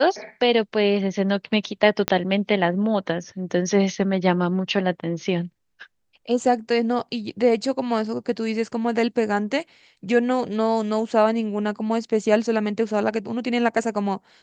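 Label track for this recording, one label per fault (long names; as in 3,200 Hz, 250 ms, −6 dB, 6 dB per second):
2.080000	2.080000	click −5 dBFS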